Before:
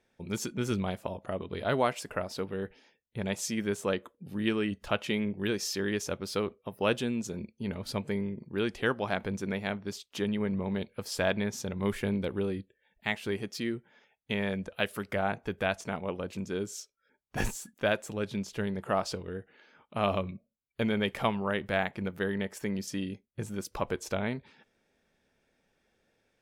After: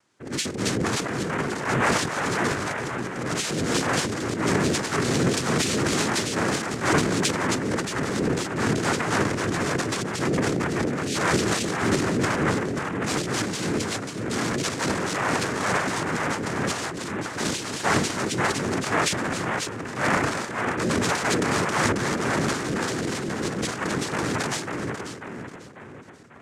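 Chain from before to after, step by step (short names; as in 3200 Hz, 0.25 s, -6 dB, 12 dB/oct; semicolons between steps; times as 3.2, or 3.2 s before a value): split-band echo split 1000 Hz, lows 0.543 s, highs 0.269 s, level -4 dB; noise vocoder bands 3; transient shaper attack -4 dB, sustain +11 dB; gain +5 dB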